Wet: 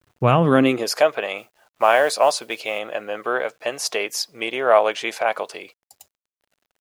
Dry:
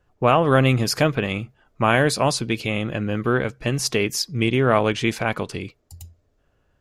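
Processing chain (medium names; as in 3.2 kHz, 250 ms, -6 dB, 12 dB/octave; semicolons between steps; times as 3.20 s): 1.37–2.79 s: modulation noise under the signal 29 dB; high-pass sweep 96 Hz -> 630 Hz, 0.25–0.95 s; bit crusher 10-bit; trim -1 dB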